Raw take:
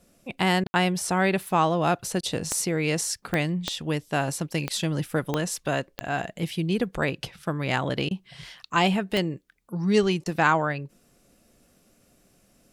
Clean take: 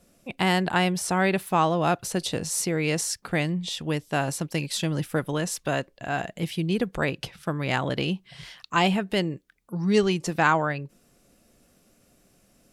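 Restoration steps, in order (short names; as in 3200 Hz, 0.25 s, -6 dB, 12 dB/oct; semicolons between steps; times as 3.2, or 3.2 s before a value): de-click; room tone fill 0.67–0.74; interpolate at 0.64/2.21/8.09/10.24, 18 ms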